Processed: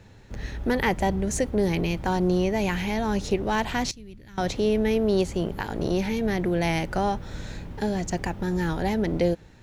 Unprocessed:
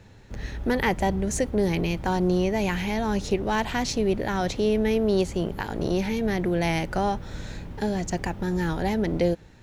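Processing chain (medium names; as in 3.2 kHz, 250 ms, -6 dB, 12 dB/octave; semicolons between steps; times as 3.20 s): 3.91–4.38 s: amplifier tone stack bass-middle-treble 6-0-2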